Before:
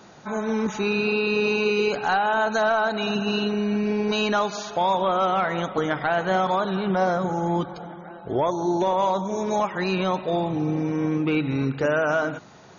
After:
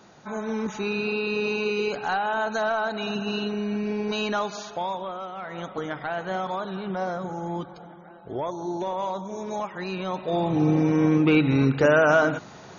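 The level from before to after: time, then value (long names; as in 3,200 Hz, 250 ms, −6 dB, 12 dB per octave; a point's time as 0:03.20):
0:04.64 −4 dB
0:05.33 −15 dB
0:05.64 −7 dB
0:10.03 −7 dB
0:10.63 +4 dB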